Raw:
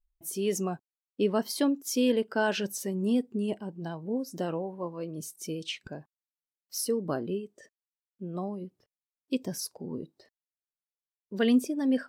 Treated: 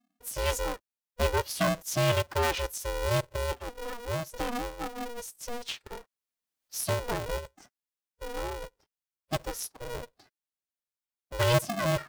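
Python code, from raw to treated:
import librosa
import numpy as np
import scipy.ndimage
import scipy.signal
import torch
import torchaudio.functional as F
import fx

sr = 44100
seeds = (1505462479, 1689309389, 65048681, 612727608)

y = fx.pitch_keep_formants(x, sr, semitones=7.0)
y = y * np.sign(np.sin(2.0 * np.pi * 240.0 * np.arange(len(y)) / sr))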